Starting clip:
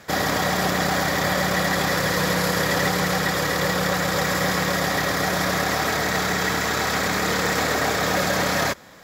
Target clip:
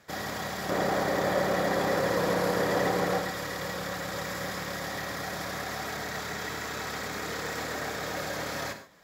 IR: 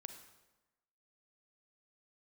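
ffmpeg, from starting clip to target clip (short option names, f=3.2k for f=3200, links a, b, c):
-filter_complex "[0:a]asettb=1/sr,asplit=3[a][b][c];[a]atrim=end=0.694[d];[b]atrim=start=0.69:end=3.2,asetpts=PTS-STARTPTS,afade=t=in:d=0.004:c=qsin,afade=t=out:st=2.506:d=0.004:c=qsin,equalizer=f=450:w=0.47:g=11.5[e];[c]atrim=start=3.196[f];[d][e]acrossfade=d=0.004:c1=hsin:c2=qsin[g];[g][f]acrossfade=d=0.004:c1=qsin:c2=hsin[h];[1:a]atrim=start_sample=2205,atrim=end_sample=6615[i];[h][i]afir=irnorm=-1:irlink=0,volume=-7dB"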